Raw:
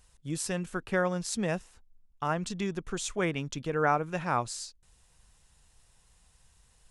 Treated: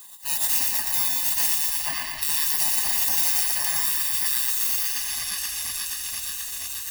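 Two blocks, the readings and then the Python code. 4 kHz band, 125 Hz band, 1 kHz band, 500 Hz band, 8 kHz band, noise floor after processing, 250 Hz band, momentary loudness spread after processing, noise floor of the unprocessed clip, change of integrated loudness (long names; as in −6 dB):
+15.5 dB, below −10 dB, −4.5 dB, −16.0 dB, +16.5 dB, −34 dBFS, below −15 dB, 8 LU, −65 dBFS, +10.0 dB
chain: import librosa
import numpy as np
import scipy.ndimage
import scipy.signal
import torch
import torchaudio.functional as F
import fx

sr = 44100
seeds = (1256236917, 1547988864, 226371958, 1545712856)

y = fx.bit_reversed(x, sr, seeds[0], block=32)
y = fx.highpass(y, sr, hz=280.0, slope=6)
y = fx.echo_feedback(y, sr, ms=117, feedback_pct=51, wet_db=-3.5)
y = fx.rider(y, sr, range_db=5, speed_s=0.5)
y = fx.peak_eq(y, sr, hz=9300.0, db=-6.0, octaves=0.24)
y = fx.echo_opening(y, sr, ms=478, hz=750, octaves=1, feedback_pct=70, wet_db=-3)
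y = fx.spec_gate(y, sr, threshold_db=-20, keep='weak')
y = fx.high_shelf(y, sr, hz=6300.0, db=9.0)
y = y + 0.92 * np.pad(y, (int(1.1 * sr / 1000.0), 0))[:len(y)]
y = fx.leveller(y, sr, passes=1)
y = fx.env_flatten(y, sr, amount_pct=50)
y = y * 10.0 ** (1.5 / 20.0)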